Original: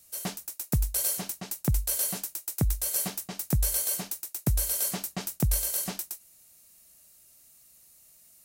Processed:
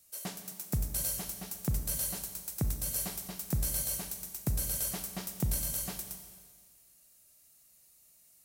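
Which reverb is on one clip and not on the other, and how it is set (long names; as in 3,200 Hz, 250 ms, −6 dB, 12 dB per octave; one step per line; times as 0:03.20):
four-comb reverb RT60 1.7 s, combs from 29 ms, DRR 6.5 dB
level −6 dB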